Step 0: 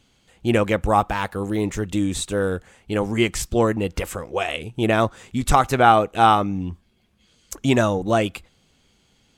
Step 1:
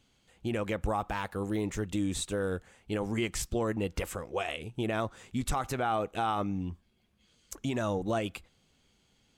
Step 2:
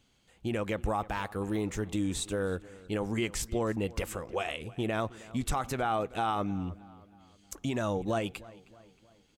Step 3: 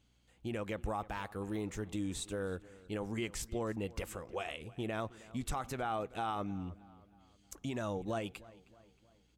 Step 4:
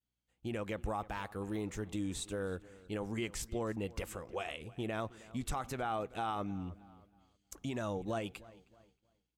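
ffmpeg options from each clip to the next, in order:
-af "alimiter=limit=0.211:level=0:latency=1:release=83,volume=0.422"
-filter_complex "[0:a]asplit=2[s0][s1];[s1]adelay=314,lowpass=f=3700:p=1,volume=0.1,asplit=2[s2][s3];[s3]adelay=314,lowpass=f=3700:p=1,volume=0.48,asplit=2[s4][s5];[s5]adelay=314,lowpass=f=3700:p=1,volume=0.48,asplit=2[s6][s7];[s7]adelay=314,lowpass=f=3700:p=1,volume=0.48[s8];[s0][s2][s4][s6][s8]amix=inputs=5:normalize=0"
-af "aeval=exprs='val(0)+0.000562*(sin(2*PI*60*n/s)+sin(2*PI*2*60*n/s)/2+sin(2*PI*3*60*n/s)/3+sin(2*PI*4*60*n/s)/4+sin(2*PI*5*60*n/s)/5)':c=same,volume=0.473"
-af "agate=range=0.0224:threshold=0.00126:ratio=3:detection=peak"

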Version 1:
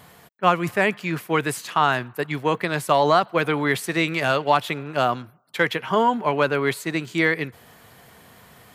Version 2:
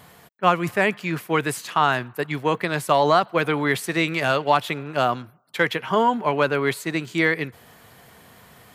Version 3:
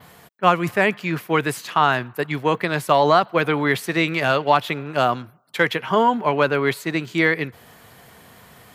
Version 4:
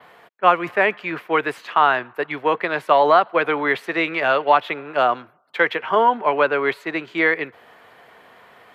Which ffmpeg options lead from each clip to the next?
-af anull
-af "adynamicequalizer=threshold=0.00316:dfrequency=8600:dqfactor=1.2:tfrequency=8600:tqfactor=1.2:attack=5:release=100:ratio=0.375:range=3:mode=cutabove:tftype=bell,volume=1.26"
-filter_complex "[0:a]acrossover=split=320 3300:gain=0.126 1 0.112[s0][s1][s2];[s0][s1][s2]amix=inputs=3:normalize=0,volume=1.26"

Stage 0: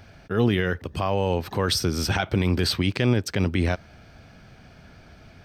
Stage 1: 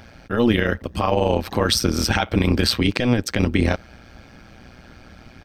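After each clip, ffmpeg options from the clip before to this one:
-af "aecho=1:1:3.7:0.42,tremolo=f=120:d=0.824,volume=2.37"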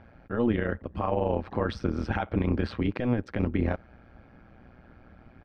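-af "lowpass=1600,volume=0.422"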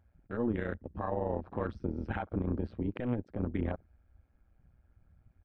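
-af "afwtdn=0.0126,volume=0.473"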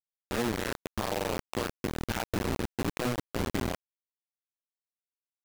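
-af "bandreject=f=60:t=h:w=6,bandreject=f=120:t=h:w=6,bandreject=f=180:t=h:w=6,acompressor=threshold=0.0158:ratio=3,acrusher=bits=5:mix=0:aa=0.000001,volume=2.24"

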